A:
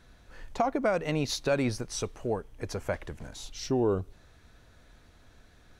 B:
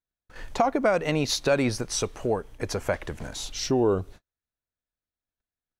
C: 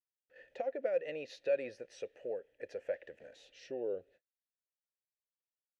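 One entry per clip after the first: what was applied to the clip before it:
gate -47 dBFS, range -46 dB; low shelf 240 Hz -4 dB; in parallel at -1.5 dB: compressor, threshold -37 dBFS, peak gain reduction 13.5 dB; on the sum: gain +3.5 dB
vowel filter e; gain -4.5 dB

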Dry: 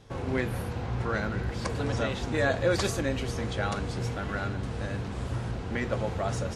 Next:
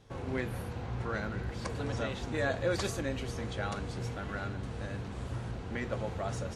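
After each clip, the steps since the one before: notch 5100 Hz, Q 29; gain -5.5 dB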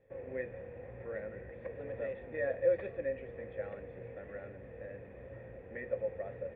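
vocal tract filter e; gain +5 dB

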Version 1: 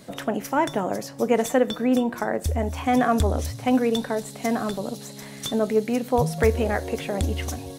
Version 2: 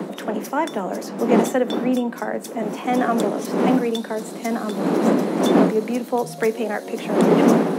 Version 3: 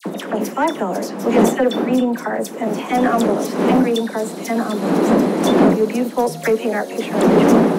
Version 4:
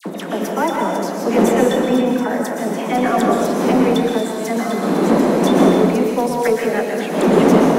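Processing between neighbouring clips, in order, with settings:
wind noise 360 Hz -20 dBFS; steep high-pass 170 Hz 96 dB/oct
dispersion lows, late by 55 ms, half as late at 1800 Hz; in parallel at -4 dB: overloaded stage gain 15.5 dB
plate-style reverb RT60 1.4 s, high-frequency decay 0.9×, pre-delay 0.105 s, DRR 0.5 dB; gain -1.5 dB

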